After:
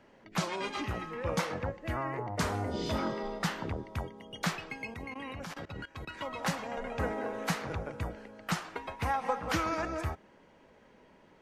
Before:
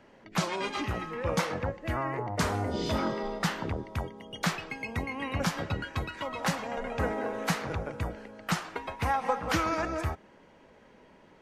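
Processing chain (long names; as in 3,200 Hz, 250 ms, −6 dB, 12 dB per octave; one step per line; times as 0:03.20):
0:04.94–0:06.10: output level in coarse steps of 19 dB
level −3 dB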